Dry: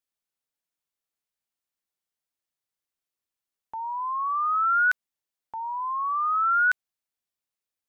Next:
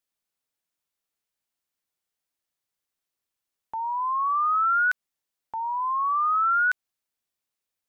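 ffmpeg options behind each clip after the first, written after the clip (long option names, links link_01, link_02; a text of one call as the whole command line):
ffmpeg -i in.wav -af "acompressor=threshold=-23dB:ratio=6,volume=3dB" out.wav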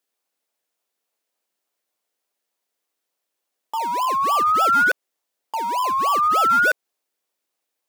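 ffmpeg -i in.wav -filter_complex "[0:a]asplit=2[link_01][link_02];[link_02]acrusher=samples=30:mix=1:aa=0.000001:lfo=1:lforange=18:lforate=3.4,volume=-6.5dB[link_03];[link_01][link_03]amix=inputs=2:normalize=0,highpass=410,volume=5dB" out.wav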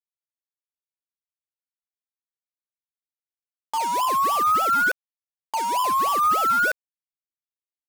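ffmpeg -i in.wav -af "alimiter=limit=-14.5dB:level=0:latency=1:release=133,acrusher=bits=4:mix=0:aa=0.5" out.wav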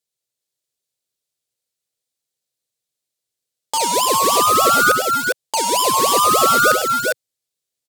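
ffmpeg -i in.wav -filter_complex "[0:a]equalizer=frequency=125:width_type=o:width=1:gain=9,equalizer=frequency=500:width_type=o:width=1:gain=11,equalizer=frequency=1000:width_type=o:width=1:gain=-5,equalizer=frequency=4000:width_type=o:width=1:gain=8,equalizer=frequency=8000:width_type=o:width=1:gain=8,equalizer=frequency=16000:width_type=o:width=1:gain=5,asplit=2[link_01][link_02];[link_02]aecho=0:1:102|398|406:0.282|0.299|0.562[link_03];[link_01][link_03]amix=inputs=2:normalize=0,volume=4.5dB" out.wav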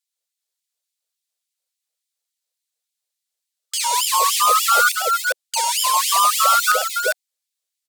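ffmpeg -i in.wav -af "afftfilt=real='re*gte(b*sr/1024,380*pow(1900/380,0.5+0.5*sin(2*PI*3.5*pts/sr)))':imag='im*gte(b*sr/1024,380*pow(1900/380,0.5+0.5*sin(2*PI*3.5*pts/sr)))':win_size=1024:overlap=0.75" out.wav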